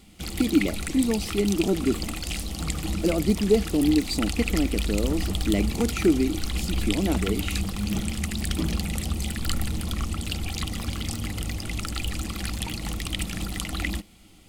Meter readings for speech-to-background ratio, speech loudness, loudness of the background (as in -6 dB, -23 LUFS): 4.0 dB, -26.0 LUFS, -30.0 LUFS